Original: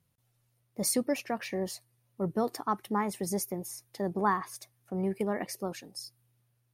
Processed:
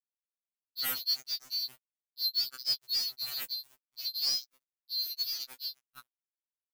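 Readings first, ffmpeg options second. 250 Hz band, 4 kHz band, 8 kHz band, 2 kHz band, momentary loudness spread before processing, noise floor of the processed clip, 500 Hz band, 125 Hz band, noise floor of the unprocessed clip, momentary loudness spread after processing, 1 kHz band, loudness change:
under -30 dB, +15.0 dB, -6.0 dB, -7.0 dB, 14 LU, under -85 dBFS, under -25 dB, under -25 dB, -74 dBFS, 10 LU, -21.0 dB, +0.5 dB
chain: -af "afftfilt=real='real(if(lt(b,736),b+184*(1-2*mod(floor(b/184),2)),b),0)':imag='imag(if(lt(b,736),b+184*(1-2*mod(floor(b/184),2)),b),0)':win_size=2048:overlap=0.75,acrusher=bits=4:mix=0:aa=0.5,afftfilt=real='re*2.45*eq(mod(b,6),0)':imag='im*2.45*eq(mod(b,6),0)':win_size=2048:overlap=0.75"

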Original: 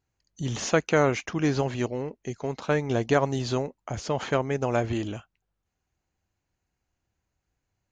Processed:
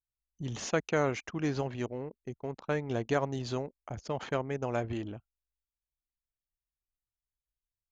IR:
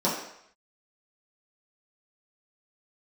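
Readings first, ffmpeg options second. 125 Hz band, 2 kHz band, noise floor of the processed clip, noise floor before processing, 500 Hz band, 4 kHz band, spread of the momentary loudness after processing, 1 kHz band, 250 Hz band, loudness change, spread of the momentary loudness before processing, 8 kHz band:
-7.0 dB, -7.0 dB, under -85 dBFS, -82 dBFS, -7.0 dB, -8.0 dB, 11 LU, -7.0 dB, -7.0 dB, -7.0 dB, 11 LU, -8.0 dB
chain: -af "anlmdn=2.51,volume=-7dB"

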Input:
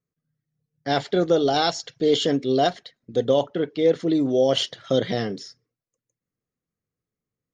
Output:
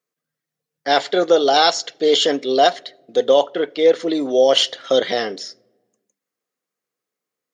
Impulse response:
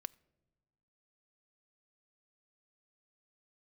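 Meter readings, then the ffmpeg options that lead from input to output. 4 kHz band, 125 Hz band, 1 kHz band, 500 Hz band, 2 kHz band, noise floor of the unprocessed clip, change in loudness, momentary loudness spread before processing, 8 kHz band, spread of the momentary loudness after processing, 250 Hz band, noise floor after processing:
+8.0 dB, under -10 dB, +7.5 dB, +5.5 dB, +8.0 dB, under -85 dBFS, +5.5 dB, 8 LU, n/a, 9 LU, -0.5 dB, -85 dBFS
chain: -filter_complex "[0:a]highpass=480,asplit=2[a][b];[1:a]atrim=start_sample=2205[c];[b][c]afir=irnorm=-1:irlink=0,volume=11.5dB[d];[a][d]amix=inputs=2:normalize=0,volume=-2.5dB"

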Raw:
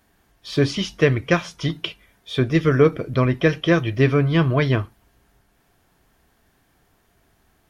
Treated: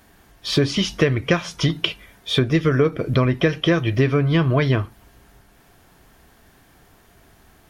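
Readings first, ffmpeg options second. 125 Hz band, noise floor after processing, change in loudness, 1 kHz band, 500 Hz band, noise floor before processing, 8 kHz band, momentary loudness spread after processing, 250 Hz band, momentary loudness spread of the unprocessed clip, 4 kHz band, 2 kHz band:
+0.5 dB, -54 dBFS, 0.0 dB, -0.5 dB, -1.0 dB, -63 dBFS, n/a, 6 LU, +0.5 dB, 10 LU, +5.0 dB, -0.5 dB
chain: -af "acompressor=threshold=-25dB:ratio=4,volume=9dB"

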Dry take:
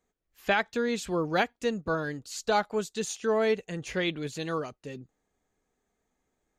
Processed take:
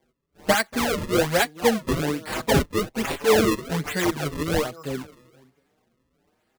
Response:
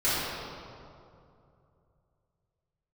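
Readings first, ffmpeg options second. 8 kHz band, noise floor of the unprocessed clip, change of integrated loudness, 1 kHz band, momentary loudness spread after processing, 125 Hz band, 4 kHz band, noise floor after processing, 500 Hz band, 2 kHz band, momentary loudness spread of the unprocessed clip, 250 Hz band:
+8.5 dB, -80 dBFS, +6.0 dB, +4.5 dB, 9 LU, +10.0 dB, +8.0 dB, -72 dBFS, +5.5 dB, +5.0 dB, 9 LU, +8.0 dB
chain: -filter_complex "[0:a]asplit=2[a][b];[b]adelay=237,lowpass=f=1.6k:p=1,volume=-19dB,asplit=2[c][d];[d]adelay=237,lowpass=f=1.6k:p=1,volume=0.36,asplit=2[e][f];[f]adelay=237,lowpass=f=1.6k:p=1,volume=0.36[g];[c][e][g]amix=inputs=3:normalize=0[h];[a][h]amix=inputs=2:normalize=0,acrossover=split=1400[i][j];[i]aeval=exprs='val(0)*(1-0.5/2+0.5/2*cos(2*PI*2.4*n/s))':c=same[k];[j]aeval=exprs='val(0)*(1-0.5/2-0.5/2*cos(2*PI*2.4*n/s))':c=same[l];[k][l]amix=inputs=2:normalize=0,asplit=2[m][n];[n]acompressor=threshold=-41dB:ratio=6,volume=1.5dB[o];[m][o]amix=inputs=2:normalize=0,highpass=94,acrusher=samples=33:mix=1:aa=0.000001:lfo=1:lforange=52.8:lforate=1.2,asplit=2[p][q];[q]adelay=5.9,afreqshift=1.7[r];[p][r]amix=inputs=2:normalize=1,volume=9dB"

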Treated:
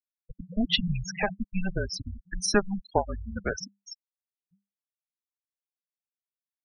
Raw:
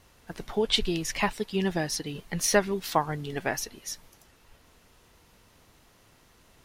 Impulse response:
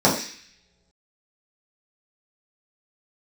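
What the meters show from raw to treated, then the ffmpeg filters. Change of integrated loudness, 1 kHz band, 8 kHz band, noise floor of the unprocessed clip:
-1.5 dB, -3.5 dB, -5.5 dB, -60 dBFS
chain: -af "afftfilt=real='re*gte(hypot(re,im),0.0708)':imag='im*gte(hypot(re,im),0.0708)':win_size=1024:overlap=0.75,afreqshift=-200"

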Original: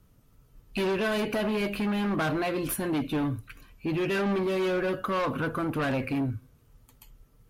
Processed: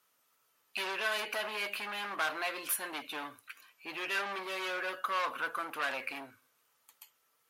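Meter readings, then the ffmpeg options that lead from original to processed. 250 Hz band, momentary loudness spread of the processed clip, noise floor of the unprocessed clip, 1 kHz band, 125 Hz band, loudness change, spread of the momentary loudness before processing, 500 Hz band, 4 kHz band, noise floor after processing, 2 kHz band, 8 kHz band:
-22.0 dB, 11 LU, -61 dBFS, -3.0 dB, under -30 dB, -6.5 dB, 6 LU, -13.0 dB, 0.0 dB, -74 dBFS, -0.5 dB, 0.0 dB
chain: -af "highpass=1k"

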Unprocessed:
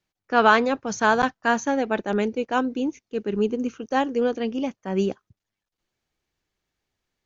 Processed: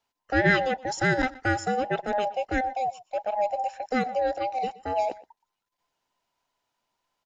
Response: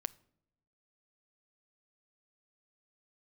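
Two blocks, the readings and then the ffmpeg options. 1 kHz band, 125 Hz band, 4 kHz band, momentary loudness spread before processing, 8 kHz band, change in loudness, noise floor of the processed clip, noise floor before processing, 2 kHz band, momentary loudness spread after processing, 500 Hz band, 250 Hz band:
-2.5 dB, +3.5 dB, -4.0 dB, 10 LU, n/a, -3.5 dB, -84 dBFS, under -85 dBFS, -2.0 dB, 8 LU, -3.5 dB, -7.0 dB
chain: -filter_complex "[0:a]afftfilt=real='real(if(between(b,1,1008),(2*floor((b-1)/48)+1)*48-b,b),0)':imag='imag(if(between(b,1,1008),(2*floor((b-1)/48)+1)*48-b,b),0)*if(between(b,1,1008),-1,1)':win_size=2048:overlap=0.75,asplit=2[a][b];[b]acompressor=threshold=-30dB:ratio=6,volume=1.5dB[c];[a][c]amix=inputs=2:normalize=0,asplit=2[d][e];[e]adelay=122.4,volume=-20dB,highshelf=f=4k:g=-2.76[f];[d][f]amix=inputs=2:normalize=0,volume=-6dB"

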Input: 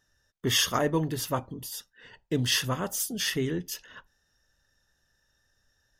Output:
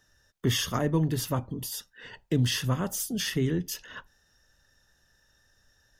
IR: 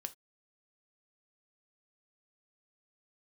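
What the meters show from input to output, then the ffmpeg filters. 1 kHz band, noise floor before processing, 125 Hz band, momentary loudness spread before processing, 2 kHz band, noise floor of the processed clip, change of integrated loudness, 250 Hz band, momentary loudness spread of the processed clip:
-3.5 dB, -74 dBFS, +5.0 dB, 14 LU, -3.5 dB, -68 dBFS, -0.5 dB, +2.5 dB, 13 LU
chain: -filter_complex "[0:a]acrossover=split=250[a][b];[b]acompressor=threshold=-41dB:ratio=2[c];[a][c]amix=inputs=2:normalize=0,volume=5.5dB"

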